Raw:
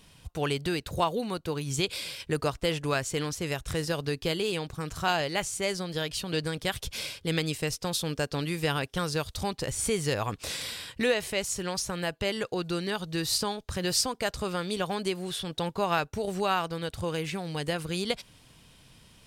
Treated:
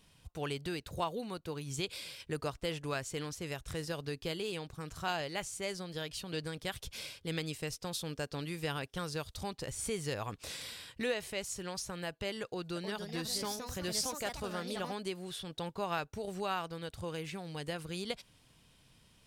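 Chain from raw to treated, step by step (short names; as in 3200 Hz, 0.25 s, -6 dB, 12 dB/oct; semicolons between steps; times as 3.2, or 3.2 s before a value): 12.43–15.01 echoes that change speed 0.329 s, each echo +3 st, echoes 2, each echo -6 dB; gain -8.5 dB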